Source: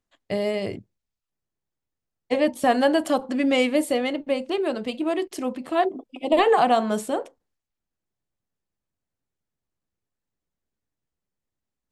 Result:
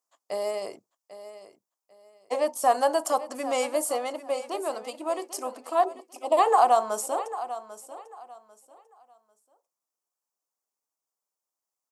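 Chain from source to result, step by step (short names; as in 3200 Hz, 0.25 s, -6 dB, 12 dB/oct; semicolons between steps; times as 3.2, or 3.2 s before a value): HPF 920 Hz 12 dB/oct; band shelf 2500 Hz -15 dB; feedback echo 0.795 s, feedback 25%, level -14 dB; gain +5.5 dB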